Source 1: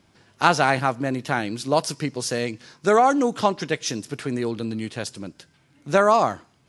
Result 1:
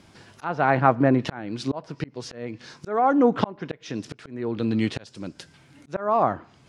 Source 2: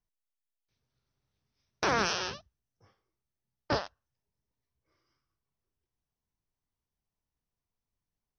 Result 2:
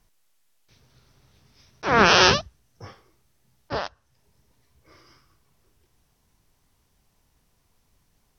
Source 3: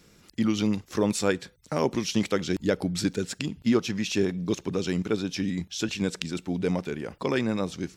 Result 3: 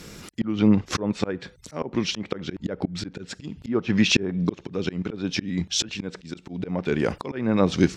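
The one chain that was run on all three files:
treble ducked by the level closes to 1600 Hz, closed at -20.5 dBFS; auto swell 0.57 s; normalise peaks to -3 dBFS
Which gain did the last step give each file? +7.0, +23.0, +14.5 dB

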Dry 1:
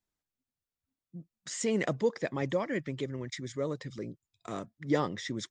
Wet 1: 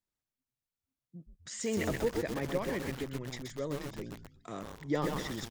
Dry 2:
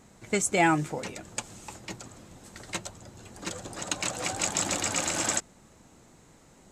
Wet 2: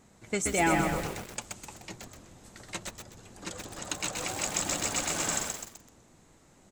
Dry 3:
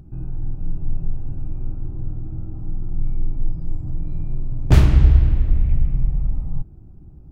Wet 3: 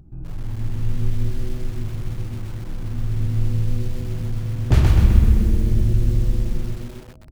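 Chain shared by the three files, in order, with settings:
frequency-shifting echo 0.126 s, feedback 39%, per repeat -130 Hz, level -7 dB; lo-fi delay 0.128 s, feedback 55%, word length 6-bit, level -4 dB; gain -4 dB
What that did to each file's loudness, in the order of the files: -2.0, -2.0, 0.0 LU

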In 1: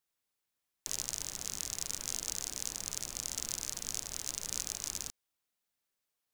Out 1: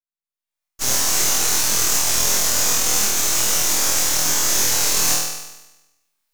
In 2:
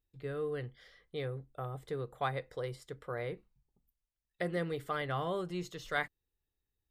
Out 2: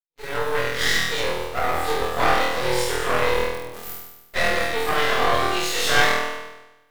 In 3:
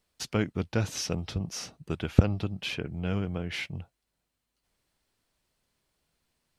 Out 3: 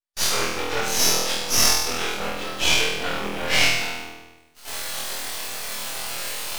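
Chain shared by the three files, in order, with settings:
phase scrambler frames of 0.1 s; recorder AGC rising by 34 dB/s; in parallel at -7 dB: bit-crush 7-bit; on the sum: gate -48 dBFS, range -33 dB; shoebox room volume 240 m³, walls mixed, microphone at 0.34 m; reverse; compressor 6:1, threshold -30 dBFS; reverse; HPF 640 Hz 12 dB/oct; flutter echo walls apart 4.2 m, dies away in 1 s; half-wave rectifier; normalise peaks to -2 dBFS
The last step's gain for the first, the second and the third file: +13.0, +15.0, +15.0 dB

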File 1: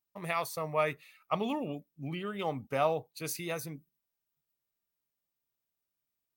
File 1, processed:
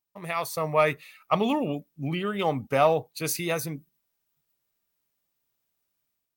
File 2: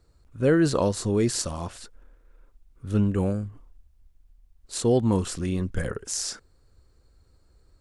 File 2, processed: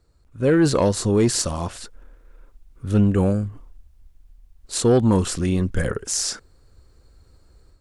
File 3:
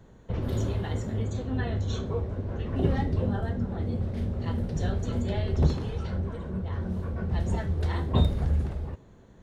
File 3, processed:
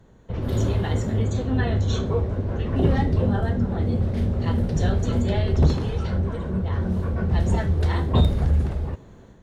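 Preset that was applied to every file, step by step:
AGC gain up to 7.5 dB; in parallel at -10.5 dB: sine folder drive 6 dB, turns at -3 dBFS; on the sum: normalise peaks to -9 dBFS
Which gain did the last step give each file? -5.0, -6.5, -6.0 dB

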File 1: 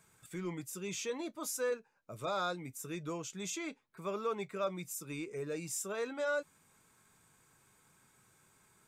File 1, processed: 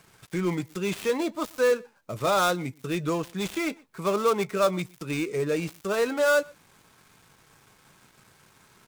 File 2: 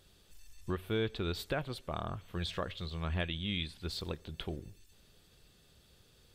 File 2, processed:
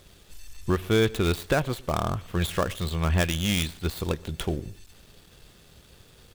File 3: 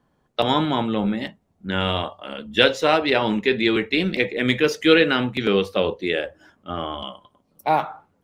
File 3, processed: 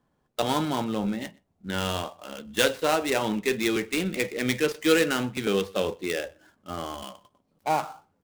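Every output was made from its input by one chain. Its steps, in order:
switching dead time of 0.091 ms; outdoor echo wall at 21 m, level -26 dB; match loudness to -27 LUFS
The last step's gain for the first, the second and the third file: +12.5, +11.5, -5.5 dB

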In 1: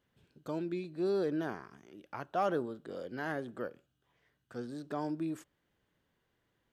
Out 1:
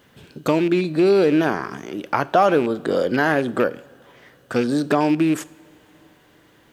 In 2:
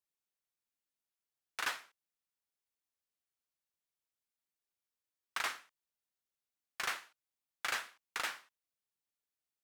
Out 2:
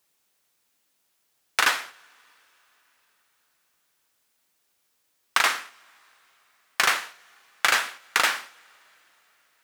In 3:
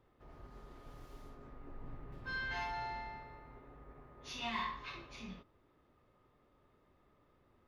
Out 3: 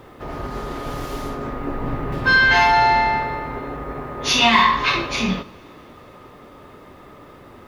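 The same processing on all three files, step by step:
rattling part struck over -40 dBFS, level -41 dBFS; compressor 2.5:1, threshold -40 dBFS; low shelf 86 Hz -10.5 dB; two-slope reverb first 0.57 s, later 4.3 s, from -17 dB, DRR 18.5 dB; normalise peaks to -3 dBFS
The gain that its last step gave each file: +24.0, +21.0, +28.5 dB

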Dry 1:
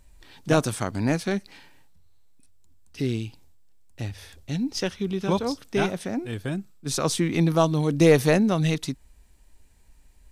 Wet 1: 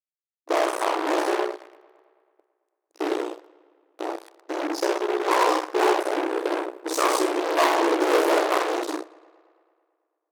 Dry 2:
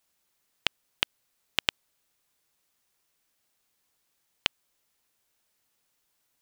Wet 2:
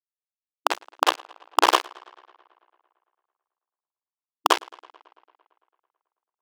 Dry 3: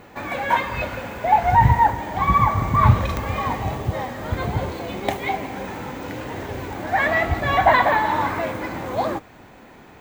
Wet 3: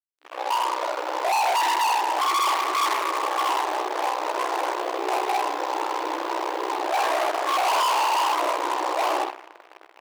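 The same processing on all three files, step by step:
opening faded in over 1.18 s; Schroeder reverb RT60 0.45 s, DRR -1 dB; dynamic EQ 490 Hz, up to -5 dB, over -31 dBFS, Q 1.1; ring modulator 31 Hz; resonant high shelf 1500 Hz -12.5 dB, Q 3; fuzz box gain 29 dB, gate -37 dBFS; brick-wall FIR high-pass 300 Hz; tape echo 0.111 s, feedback 73%, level -23.5 dB, low-pass 5600 Hz; match loudness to -24 LUFS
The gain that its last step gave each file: -1.0, +9.5, -7.0 dB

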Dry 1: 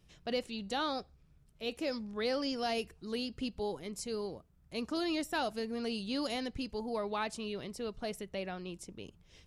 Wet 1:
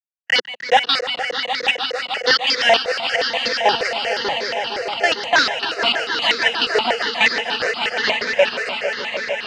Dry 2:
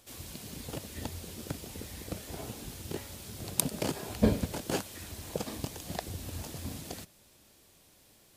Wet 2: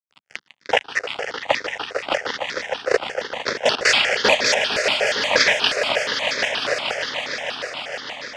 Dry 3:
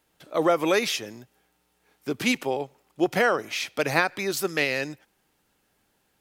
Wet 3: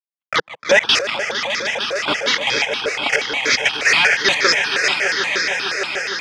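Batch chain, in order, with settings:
rattling part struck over -25 dBFS, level -7 dBFS; low-pass opened by the level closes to 1300 Hz, open at -23 dBFS; tilt +4 dB/oct; in parallel at -2.5 dB: negative-ratio compressor -32 dBFS, ratio -1; on the sum: LFO high-pass square 1.3 Hz 560–2000 Hz; fuzz box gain 33 dB, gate -39 dBFS; step gate ".x.x...x.x.xxx" 152 bpm -60 dB; speaker cabinet 170–5300 Hz, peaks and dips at 180 Hz -6 dB, 350 Hz -5 dB, 680 Hz -4 dB, 1100 Hz -4 dB, 2400 Hz -5 dB, 4000 Hz -7 dB; on a send: swelling echo 0.152 s, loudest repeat 5, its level -10.5 dB; on the sum: step phaser 8.4 Hz 880–2900 Hz; normalise peaks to -1.5 dBFS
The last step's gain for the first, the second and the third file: +9.0, +10.0, +8.0 dB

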